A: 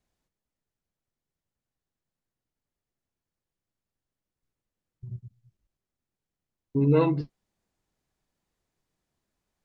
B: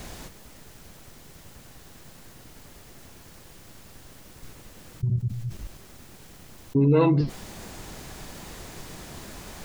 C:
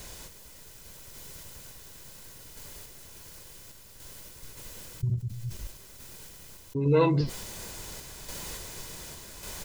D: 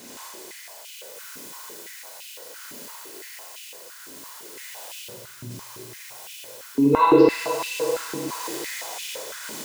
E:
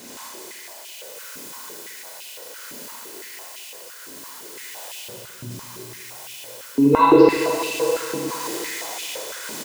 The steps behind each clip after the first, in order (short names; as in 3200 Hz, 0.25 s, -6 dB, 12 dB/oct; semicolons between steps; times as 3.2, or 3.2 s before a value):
fast leveller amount 70%; gain +1 dB
high shelf 3200 Hz +9.5 dB; comb 2 ms, depth 35%; random-step tremolo; gain -1.5 dB
Schroeder reverb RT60 3.7 s, combs from 29 ms, DRR -5.5 dB; stepped high-pass 5.9 Hz 260–2700 Hz
feedback echo 0.208 s, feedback 49%, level -13 dB; gain +2.5 dB